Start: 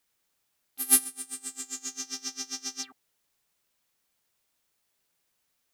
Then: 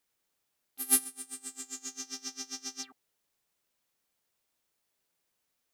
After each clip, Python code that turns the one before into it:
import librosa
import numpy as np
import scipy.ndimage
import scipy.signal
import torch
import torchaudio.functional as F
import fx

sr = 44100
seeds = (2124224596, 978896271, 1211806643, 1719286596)

y = fx.peak_eq(x, sr, hz=430.0, db=3.0, octaves=2.1)
y = F.gain(torch.from_numpy(y), -4.5).numpy()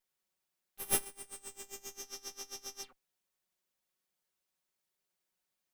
y = fx.lower_of_two(x, sr, delay_ms=5.4)
y = F.gain(torch.from_numpy(y), -4.5).numpy()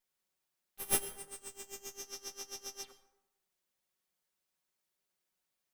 y = fx.rev_plate(x, sr, seeds[0], rt60_s=0.89, hf_ratio=0.5, predelay_ms=80, drr_db=13.5)